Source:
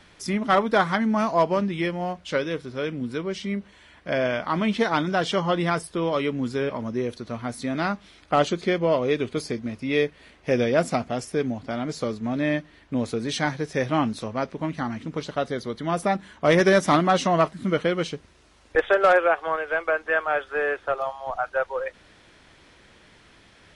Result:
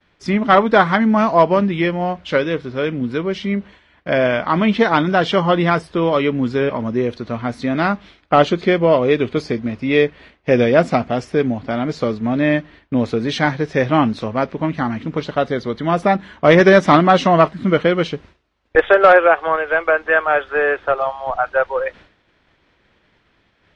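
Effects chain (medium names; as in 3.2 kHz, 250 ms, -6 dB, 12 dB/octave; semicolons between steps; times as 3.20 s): low-pass 3.7 kHz 12 dB/octave; expander -44 dBFS; trim +8 dB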